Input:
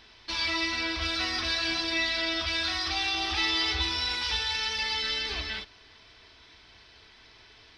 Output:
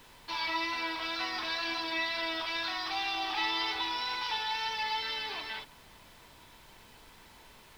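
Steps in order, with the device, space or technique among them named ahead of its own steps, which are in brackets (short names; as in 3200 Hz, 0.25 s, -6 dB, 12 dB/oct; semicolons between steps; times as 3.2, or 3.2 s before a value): horn gramophone (BPF 290–4400 Hz; bell 920 Hz +11 dB 0.43 oct; wow and flutter 17 cents; pink noise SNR 22 dB); gain -4.5 dB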